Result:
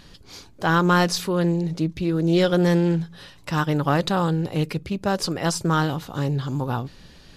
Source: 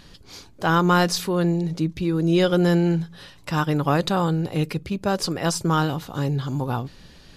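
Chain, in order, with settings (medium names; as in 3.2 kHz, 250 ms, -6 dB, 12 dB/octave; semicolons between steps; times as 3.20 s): loudspeaker Doppler distortion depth 0.14 ms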